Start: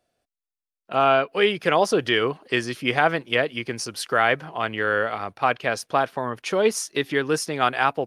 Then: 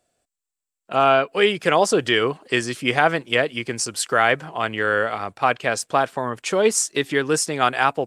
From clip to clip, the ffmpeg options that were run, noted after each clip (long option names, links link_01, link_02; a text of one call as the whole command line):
ffmpeg -i in.wav -af "equalizer=frequency=7700:width=3.7:gain=14.5,volume=2dB" out.wav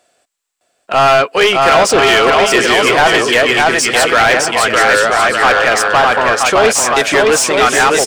ffmpeg -i in.wav -filter_complex "[0:a]asplit=2[link_01][link_02];[link_02]aecho=0:1:610|976|1196|1327|1406:0.631|0.398|0.251|0.158|0.1[link_03];[link_01][link_03]amix=inputs=2:normalize=0,asplit=2[link_04][link_05];[link_05]highpass=frequency=720:poles=1,volume=24dB,asoftclip=type=tanh:threshold=0dB[link_06];[link_04][link_06]amix=inputs=2:normalize=0,lowpass=frequency=5000:poles=1,volume=-6dB,volume=-1dB" out.wav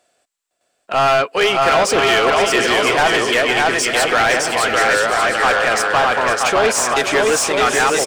ffmpeg -i in.wav -af "aecho=1:1:509|1018|1527|2036:0.282|0.118|0.0497|0.0209,volume=-5dB" out.wav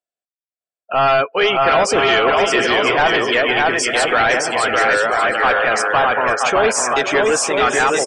ffmpeg -i in.wav -af "afftdn=noise_reduction=32:noise_floor=-26" out.wav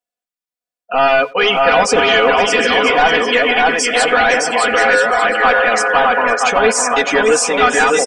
ffmpeg -i in.wav -filter_complex "[0:a]aecho=1:1:4.1:0.95,asplit=2[link_01][link_02];[link_02]adelay=90,highpass=300,lowpass=3400,asoftclip=type=hard:threshold=-10.5dB,volume=-22dB[link_03];[link_01][link_03]amix=inputs=2:normalize=0" out.wav